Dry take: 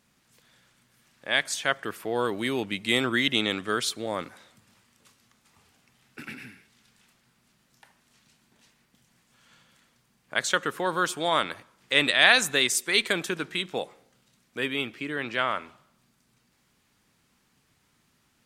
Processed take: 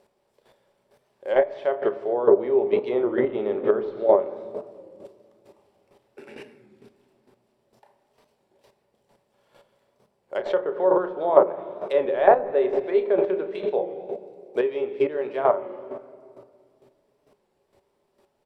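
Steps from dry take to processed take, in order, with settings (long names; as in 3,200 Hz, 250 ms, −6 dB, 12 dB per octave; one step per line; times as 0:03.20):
gap after every zero crossing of 0.052 ms
mains-hum notches 50/100/150 Hz
on a send at −11.5 dB: low-shelf EQ 420 Hz +11.5 dB + convolution reverb RT60 2.3 s, pre-delay 3 ms
on the sum: treble cut that deepens with the level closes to 1,500 Hz, closed at −23.5 dBFS
double-tracking delay 32 ms −10 dB
square-wave tremolo 2.2 Hz, depth 65%, duty 15%
treble cut that deepens with the level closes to 1,200 Hz, closed at −23 dBFS
flat-topped bell 610 Hz +12 dB
notch filter 6,500 Hz, Q 8.6
hollow resonant body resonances 400/570 Hz, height 13 dB, ringing for 70 ms
wow of a warped record 33 1/3 rpm, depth 100 cents
level −2 dB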